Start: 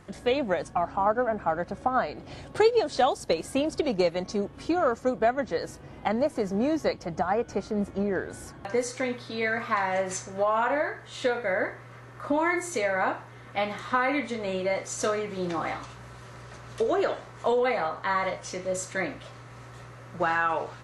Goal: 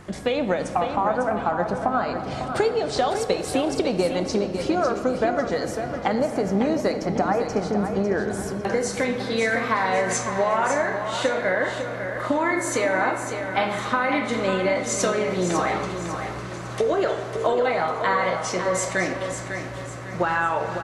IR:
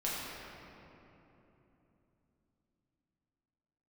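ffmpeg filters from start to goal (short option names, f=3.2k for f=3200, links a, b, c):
-filter_complex "[0:a]acompressor=threshold=-27dB:ratio=6,aecho=1:1:551|1102|1653|2204:0.398|0.151|0.0575|0.0218,asplit=2[a][b];[1:a]atrim=start_sample=2205[c];[b][c]afir=irnorm=-1:irlink=0,volume=-11.5dB[d];[a][d]amix=inputs=2:normalize=0,volume=6dB"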